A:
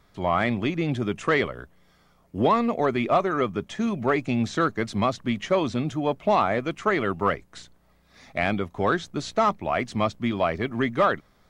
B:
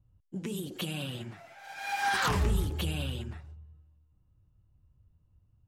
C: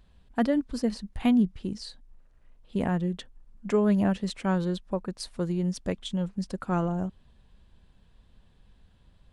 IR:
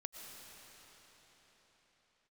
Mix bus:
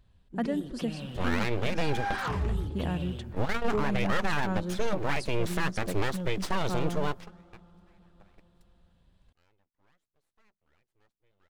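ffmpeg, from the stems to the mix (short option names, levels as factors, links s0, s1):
-filter_complex "[0:a]aeval=exprs='abs(val(0))':c=same,adelay=1000,volume=1.19[s0];[1:a]lowpass=f=1800:p=1,volume=0.794[s1];[2:a]volume=0.447,asplit=3[s2][s3][s4];[s3]volume=0.299[s5];[s4]apad=whole_len=550981[s6];[s0][s6]sidechaingate=range=0.00501:threshold=0.00158:ratio=16:detection=peak[s7];[3:a]atrim=start_sample=2205[s8];[s5][s8]afir=irnorm=-1:irlink=0[s9];[s7][s1][s2][s9]amix=inputs=4:normalize=0,alimiter=limit=0.15:level=0:latency=1:release=66"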